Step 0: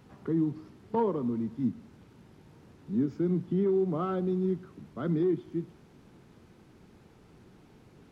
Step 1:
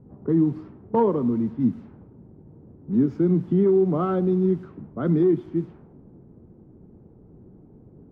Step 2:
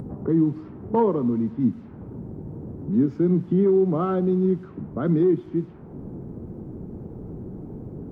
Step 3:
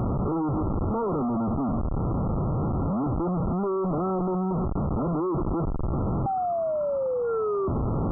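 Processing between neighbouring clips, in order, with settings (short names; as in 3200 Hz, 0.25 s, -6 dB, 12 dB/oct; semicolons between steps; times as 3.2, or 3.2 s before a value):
low-pass opened by the level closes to 400 Hz, open at -27.5 dBFS; high shelf 2400 Hz -10 dB; gain +8 dB
upward compressor, threshold -23 dBFS
painted sound fall, 6.26–7.68, 380–790 Hz -19 dBFS; Schmitt trigger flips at -38 dBFS; brick-wall FIR low-pass 1400 Hz; gain -3 dB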